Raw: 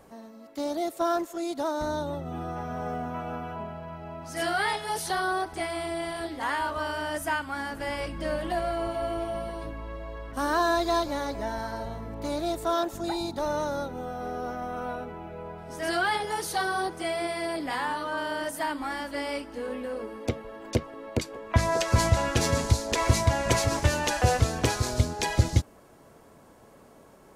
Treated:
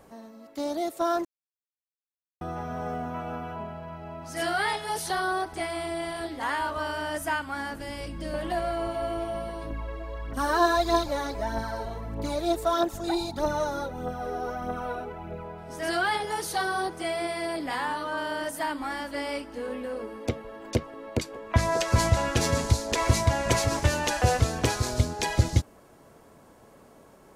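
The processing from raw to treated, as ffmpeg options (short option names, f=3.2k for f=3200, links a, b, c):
-filter_complex "[0:a]asettb=1/sr,asplit=3[a][b][c];[a]atrim=end=7.764[d];[b]atrim=start=7.76:end=8.34,asetpts=PTS-STARTPTS,afade=t=in:d=0.004:c=qsin,afade=t=out:st=0.576:d=0.004:c=qsin,acrossover=split=430|3000[e][f][g];[f]acompressor=threshold=-56dB:ratio=1.5:attack=3.2:release=140:knee=2.83:detection=peak[h];[e][h][g]amix=inputs=3:normalize=0[i];[c]atrim=start=8.336[j];[d][i]acrossfade=d=0.004:c1=hsin:c2=qsin[k];[k][j]acrossfade=d=0.004:c1=qsin:c2=hsin,asettb=1/sr,asplit=3[l][m][n];[l]atrim=end=9.704[o];[m]atrim=start=9.7:end=15.45,asetpts=PTS-STARTPTS,afade=t=in:d=0.004:c=qsin,afade=t=out:st=5.746:d=0.004:c=qsin,aphaser=in_gain=1:out_gain=1:delay=3:decay=0.5:speed=1.6:type=triangular[p];[n]atrim=start=15.446[q];[o][p]acrossfade=d=0.004:c1=hsin:c2=qsin[r];[r][q]acrossfade=d=0.004:c1=qsin:c2=hsin,asplit=3[s][t][u];[s]atrim=end=1.25,asetpts=PTS-STARTPTS,afade=t=out:st=1.246:d=0.004:c=hsin[v];[t]atrim=start=1.25:end=2.41,asetpts=PTS-STARTPTS,volume=0[w];[u]atrim=start=2.41,asetpts=PTS-STARTPTS,afade=t=in:d=0.004:c=hsin[x];[v][w][x]concat=n=3:v=0:a=1"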